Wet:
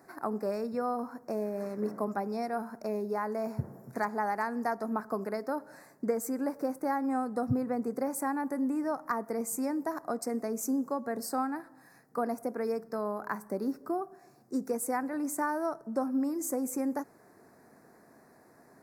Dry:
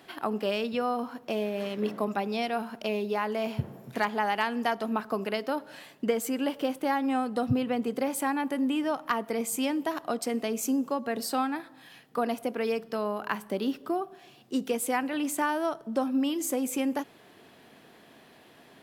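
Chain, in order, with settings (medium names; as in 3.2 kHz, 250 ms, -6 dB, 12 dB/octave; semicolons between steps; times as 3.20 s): Butterworth band-stop 3.1 kHz, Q 0.85; trim -3 dB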